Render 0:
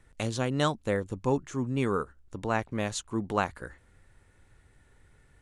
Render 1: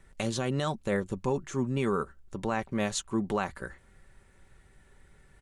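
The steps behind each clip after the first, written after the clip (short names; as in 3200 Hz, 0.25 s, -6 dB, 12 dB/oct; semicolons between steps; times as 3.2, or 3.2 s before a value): comb 5.2 ms, depth 41%; limiter -20 dBFS, peak gain reduction 9 dB; gain +1.5 dB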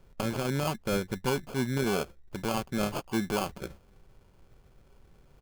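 sample-rate reducer 1900 Hz, jitter 0%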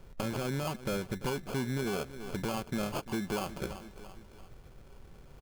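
feedback echo 0.339 s, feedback 47%, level -21 dB; compressor, threshold -34 dBFS, peak gain reduction 10.5 dB; soft clip -29.5 dBFS, distortion -17 dB; gain +5.5 dB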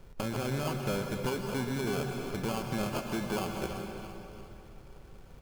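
reverb RT60 2.8 s, pre-delay 0.113 s, DRR 3.5 dB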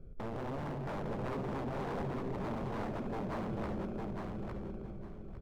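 running mean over 47 samples; wavefolder -36 dBFS; feedback echo 0.856 s, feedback 22%, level -3.5 dB; gain +2 dB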